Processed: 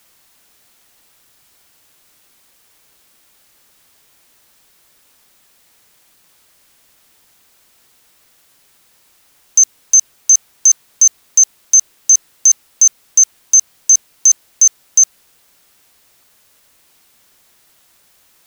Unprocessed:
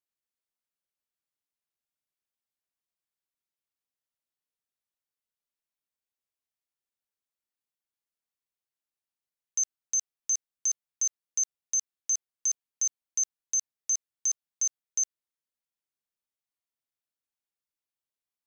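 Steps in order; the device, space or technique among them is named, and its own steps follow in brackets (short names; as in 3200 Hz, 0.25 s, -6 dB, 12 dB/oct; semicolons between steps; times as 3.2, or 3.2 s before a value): turntable without a phono preamp (RIAA curve recording; white noise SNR 35 dB); gain +8.5 dB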